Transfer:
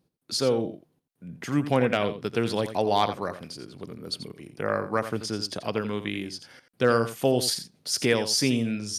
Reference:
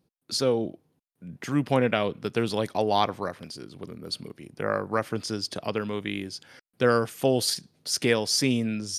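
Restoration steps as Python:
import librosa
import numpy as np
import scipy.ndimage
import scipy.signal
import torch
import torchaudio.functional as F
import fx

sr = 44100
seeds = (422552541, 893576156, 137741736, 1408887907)

y = fx.fix_declip(x, sr, threshold_db=-10.0)
y = fx.fix_echo_inverse(y, sr, delay_ms=86, level_db=-11.5)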